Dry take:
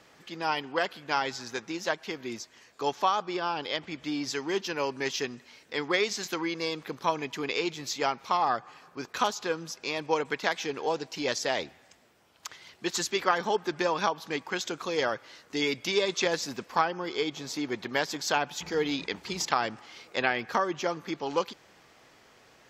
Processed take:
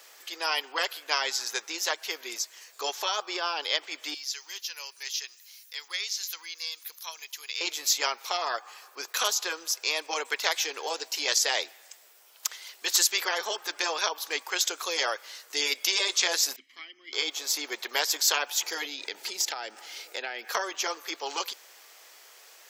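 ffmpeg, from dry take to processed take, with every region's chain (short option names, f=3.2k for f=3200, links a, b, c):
-filter_complex "[0:a]asettb=1/sr,asplit=3[a][b][c];[a]atrim=end=4.144[d];[b]atrim=start=4.14:end=7.61,asetpts=PTS-STARTPTS,afade=t=in:d=0.004:c=qsin,afade=t=out:st=3.466:d=0.004:c=qsin,acrossover=split=5600[e][f];[f]acompressor=threshold=-54dB:ratio=4:attack=1:release=60[g];[e][g]amix=inputs=2:normalize=0,aderivative,bandreject=f=7.9k:w=5.4[h];[c]atrim=start=7.606[i];[d][h]acrossfade=d=0.004:c1=hsin:c2=qsin[j];[j][i]acrossfade=d=0.004:c1=qsin:c2=hsin,asettb=1/sr,asplit=3[k][l][m];[k]atrim=end=16.564[n];[l]atrim=start=16.56:end=17.13,asetpts=PTS-STARTPTS,afade=t=in:d=0.004:c=qsin,afade=t=out:st=0.566:d=0.004:c=qsin,asplit=3[o][p][q];[o]bandpass=f=270:t=q:w=8,volume=0dB[r];[p]bandpass=f=2.29k:t=q:w=8,volume=-6dB[s];[q]bandpass=f=3.01k:t=q:w=8,volume=-9dB[t];[r][s][t]amix=inputs=3:normalize=0,aecho=1:1:1:0.63,atrim=end_sample=25137[u];[m]atrim=start=17.126[v];[n][u]acrossfade=d=0.004:c1=hsin:c2=qsin[w];[w][v]acrossfade=d=0.004:c1=qsin:c2=hsin,asettb=1/sr,asplit=3[x][y][z];[x]atrim=end=18.854[aa];[y]atrim=start=18.85:end=20.48,asetpts=PTS-STARTPTS,afade=t=in:d=0.004:c=qsin,afade=t=out:st=1.626:d=0.004:c=qsin,lowshelf=f=320:g=12,acompressor=threshold=-34dB:ratio=3:attack=3.2:release=140:knee=1:detection=peak,asuperstop=centerf=1100:order=4:qfactor=5.3[ab];[z]atrim=start=20.476[ac];[aa][ab]acrossfade=d=0.004:c1=hsin:c2=qsin[ad];[ad][ac]acrossfade=d=0.004:c1=qsin:c2=hsin,aemphasis=mode=production:type=riaa,afftfilt=real='re*lt(hypot(re,im),0.282)':imag='im*lt(hypot(re,im),0.282)':win_size=1024:overlap=0.75,highpass=f=380:w=0.5412,highpass=f=380:w=1.3066,volume=1dB"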